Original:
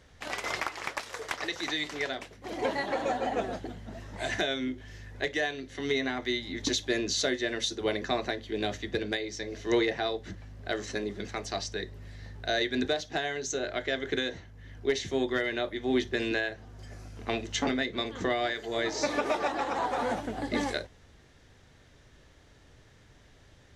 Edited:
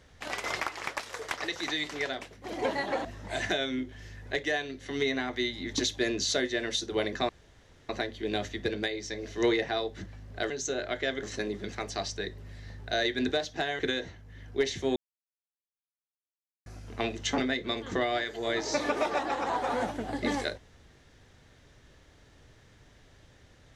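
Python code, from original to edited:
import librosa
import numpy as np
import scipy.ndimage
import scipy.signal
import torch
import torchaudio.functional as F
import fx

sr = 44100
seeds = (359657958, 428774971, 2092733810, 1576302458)

y = fx.edit(x, sr, fx.cut(start_s=3.05, length_s=0.89),
    fx.insert_room_tone(at_s=8.18, length_s=0.6),
    fx.move(start_s=13.35, length_s=0.73, to_s=10.79),
    fx.silence(start_s=15.25, length_s=1.7), tone=tone)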